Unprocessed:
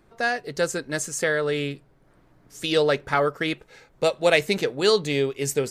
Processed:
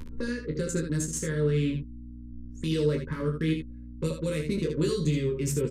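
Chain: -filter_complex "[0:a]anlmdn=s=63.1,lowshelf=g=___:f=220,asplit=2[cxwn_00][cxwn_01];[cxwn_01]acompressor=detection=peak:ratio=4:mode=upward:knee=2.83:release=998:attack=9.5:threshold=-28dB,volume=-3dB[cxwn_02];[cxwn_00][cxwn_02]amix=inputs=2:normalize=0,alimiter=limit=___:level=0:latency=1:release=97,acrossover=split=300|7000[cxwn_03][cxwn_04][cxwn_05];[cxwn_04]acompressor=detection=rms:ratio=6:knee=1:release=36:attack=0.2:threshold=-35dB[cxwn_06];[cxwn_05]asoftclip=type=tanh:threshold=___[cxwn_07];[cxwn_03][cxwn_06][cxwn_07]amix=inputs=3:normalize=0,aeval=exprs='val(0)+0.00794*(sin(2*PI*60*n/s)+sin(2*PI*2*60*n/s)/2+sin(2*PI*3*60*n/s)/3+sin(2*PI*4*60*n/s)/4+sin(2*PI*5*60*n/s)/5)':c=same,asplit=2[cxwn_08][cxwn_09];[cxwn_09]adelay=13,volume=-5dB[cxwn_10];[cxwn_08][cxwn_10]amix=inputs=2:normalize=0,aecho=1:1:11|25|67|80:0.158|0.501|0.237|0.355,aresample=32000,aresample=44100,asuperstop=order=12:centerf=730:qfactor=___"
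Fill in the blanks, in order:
3.5, -13.5dB, -36dB, 2.4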